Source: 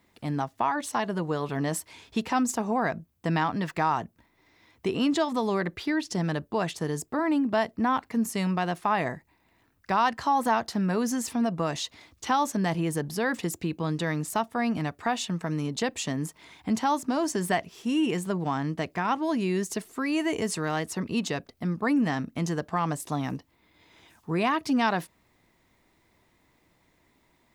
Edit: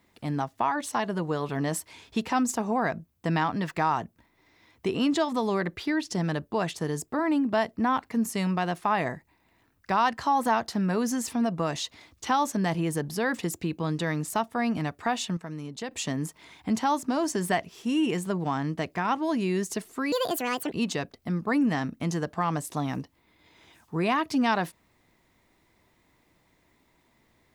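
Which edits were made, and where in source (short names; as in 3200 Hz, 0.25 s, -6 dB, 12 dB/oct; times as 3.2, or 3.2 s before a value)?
15.37–15.91 gain -7.5 dB
20.12–21.07 speed 159%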